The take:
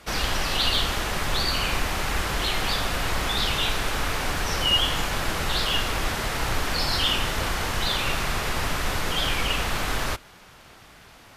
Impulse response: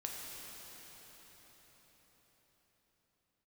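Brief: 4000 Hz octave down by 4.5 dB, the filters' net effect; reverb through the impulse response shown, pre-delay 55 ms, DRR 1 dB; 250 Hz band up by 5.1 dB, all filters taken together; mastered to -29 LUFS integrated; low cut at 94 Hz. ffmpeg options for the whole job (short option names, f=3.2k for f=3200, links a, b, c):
-filter_complex "[0:a]highpass=94,equalizer=f=250:t=o:g=7,equalizer=f=4k:t=o:g=-6.5,asplit=2[a][b];[1:a]atrim=start_sample=2205,adelay=55[c];[b][c]afir=irnorm=-1:irlink=0,volume=-1.5dB[d];[a][d]amix=inputs=2:normalize=0,volume=-4.5dB"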